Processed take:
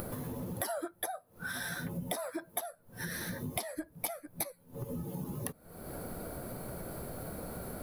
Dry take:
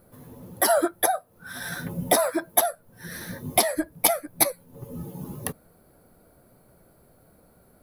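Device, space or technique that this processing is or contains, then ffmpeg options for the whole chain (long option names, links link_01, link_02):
upward and downward compression: -af "acompressor=mode=upward:threshold=-31dB:ratio=2.5,acompressor=threshold=-39dB:ratio=6,volume=3dB"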